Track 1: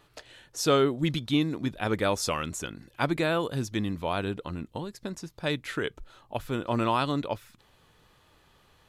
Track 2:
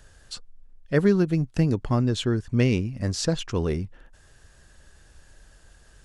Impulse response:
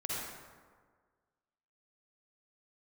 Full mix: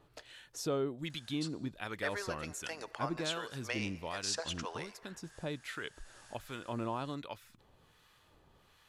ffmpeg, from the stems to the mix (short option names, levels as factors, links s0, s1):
-filter_complex "[0:a]acrossover=split=1000[s0][s1];[s0]aeval=exprs='val(0)*(1-0.7/2+0.7/2*cos(2*PI*1.3*n/s))':c=same[s2];[s1]aeval=exprs='val(0)*(1-0.7/2-0.7/2*cos(2*PI*1.3*n/s))':c=same[s3];[s2][s3]amix=inputs=2:normalize=0,volume=0.891[s4];[1:a]highpass=f=670:w=0.5412,highpass=f=670:w=1.3066,adelay=1100,volume=1.19,asplit=2[s5][s6];[s6]volume=0.1[s7];[2:a]atrim=start_sample=2205[s8];[s7][s8]afir=irnorm=-1:irlink=0[s9];[s4][s5][s9]amix=inputs=3:normalize=0,acompressor=threshold=0.00447:ratio=1.5"